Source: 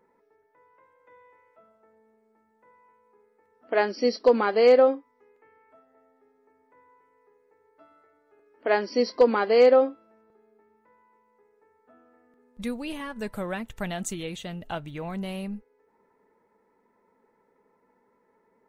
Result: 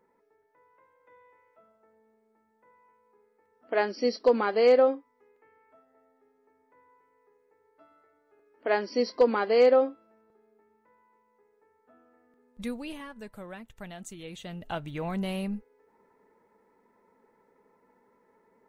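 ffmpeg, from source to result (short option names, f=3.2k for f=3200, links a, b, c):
-af "volume=9.5dB,afade=t=out:st=12.74:d=0.52:silence=0.398107,afade=t=in:st=14.14:d=0.91:silence=0.237137"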